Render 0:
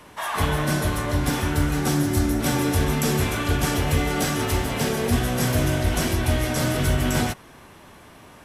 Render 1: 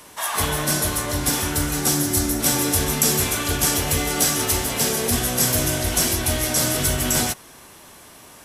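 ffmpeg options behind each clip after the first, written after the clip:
-af "bass=f=250:g=-4,treble=f=4000:g=12"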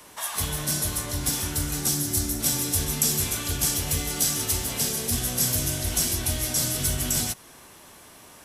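-filter_complex "[0:a]acrossover=split=220|3000[s0][s1][s2];[s1]acompressor=threshold=0.0251:ratio=6[s3];[s0][s3][s2]amix=inputs=3:normalize=0,volume=0.668"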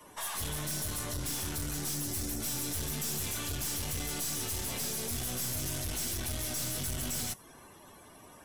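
-af "aeval=exprs='(tanh(44.7*val(0)+0.35)-tanh(0.35))/44.7':c=same,afftdn=nr=14:nf=-52"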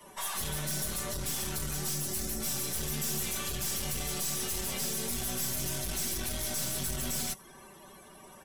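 -af "aecho=1:1:5.2:0.66"

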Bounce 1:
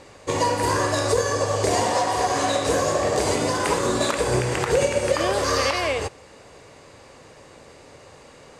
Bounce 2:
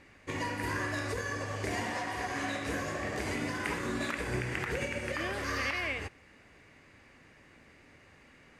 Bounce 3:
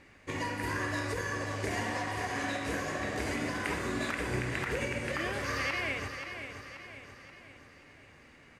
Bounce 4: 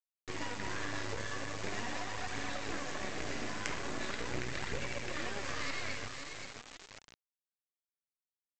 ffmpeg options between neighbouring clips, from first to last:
-af "equalizer=f=125:t=o:w=1:g=-4,equalizer=f=250:t=o:w=1:g=3,equalizer=f=500:t=o:w=1:g=-11,equalizer=f=1000:t=o:w=1:g=-7,equalizer=f=2000:t=o:w=1:g=7,equalizer=f=4000:t=o:w=1:g=-7,equalizer=f=8000:t=o:w=1:g=-11,volume=0.447"
-af "aecho=1:1:531|1062|1593|2124|2655|3186:0.376|0.184|0.0902|0.0442|0.0217|0.0106"
-af "aresample=16000,acrusher=bits=4:dc=4:mix=0:aa=0.000001,aresample=44100,flanger=delay=0.2:depth=9:regen=64:speed=0.42:shape=triangular,volume=1.33"

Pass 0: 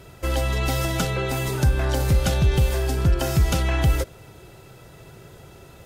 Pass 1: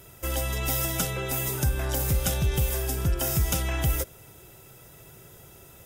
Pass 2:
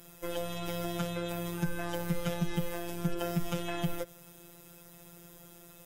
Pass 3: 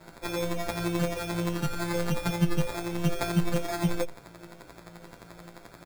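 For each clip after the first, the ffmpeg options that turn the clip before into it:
-af "aemphasis=mode=production:type=50fm,bandreject=f=4300:w=6.2,volume=0.501"
-filter_complex "[0:a]acrossover=split=3300[s0][s1];[s1]acompressor=threshold=0.00631:ratio=4:attack=1:release=60[s2];[s0][s2]amix=inputs=2:normalize=0,afftfilt=real='hypot(re,im)*cos(PI*b)':imag='0':win_size=1024:overlap=0.75"
-filter_complex "[0:a]acrusher=samples=15:mix=1:aa=0.000001,asplit=2[s0][s1];[s1]adelay=9.3,afreqshift=-2[s2];[s0][s2]amix=inputs=2:normalize=1,volume=2.66"

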